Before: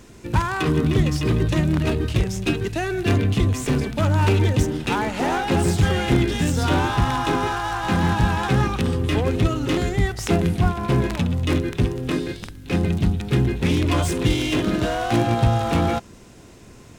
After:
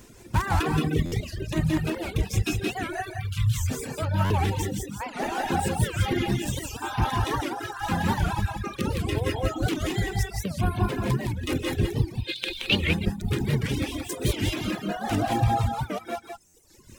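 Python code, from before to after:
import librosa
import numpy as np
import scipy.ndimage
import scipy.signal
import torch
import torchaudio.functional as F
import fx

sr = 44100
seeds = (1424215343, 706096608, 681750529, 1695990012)

p1 = fx.step_gate(x, sr, bpm=132, pattern='xx.xxxxxxx..xxxx', floor_db=-12.0, edge_ms=4.5)
p2 = fx.rev_gated(p1, sr, seeds[0], gate_ms=230, shape='rising', drr_db=-1.5)
p3 = fx.rider(p2, sr, range_db=4, speed_s=2.0)
p4 = fx.dereverb_blind(p3, sr, rt60_s=2.0)
p5 = fx.ellip_bandstop(p4, sr, low_hz=140.0, high_hz=1200.0, order=3, stop_db=40, at=(3.1, 3.69), fade=0.02)
p6 = fx.band_shelf(p5, sr, hz=3100.0, db=15.5, octaves=1.1, at=(12.18, 12.88))
p7 = fx.dereverb_blind(p6, sr, rt60_s=1.5)
p8 = fx.high_shelf(p7, sr, hz=10000.0, db=11.5)
p9 = p8 + fx.echo_single(p8, sr, ms=174, db=-5.0, dry=0)
p10 = fx.buffer_glitch(p9, sr, at_s=(1.05, 4.24, 16.47), block=512, repeats=5)
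p11 = fx.record_warp(p10, sr, rpm=78.0, depth_cents=250.0)
y = p11 * librosa.db_to_amplitude(-6.0)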